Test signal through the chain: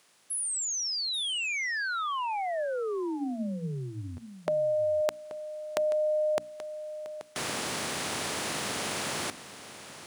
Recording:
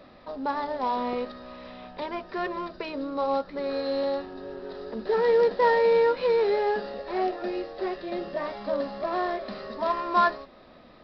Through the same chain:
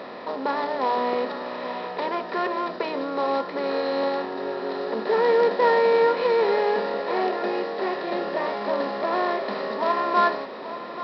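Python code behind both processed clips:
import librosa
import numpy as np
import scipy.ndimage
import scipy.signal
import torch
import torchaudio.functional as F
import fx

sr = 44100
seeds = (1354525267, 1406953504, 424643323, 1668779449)

y = fx.bin_compress(x, sr, power=0.6)
y = scipy.signal.sosfilt(scipy.signal.butter(2, 140.0, 'highpass', fs=sr, output='sos'), y)
y = fx.hum_notches(y, sr, base_hz=60, count=5)
y = y + 10.0 ** (-13.0 / 20.0) * np.pad(y, (int(831 * sr / 1000.0), 0))[:len(y)]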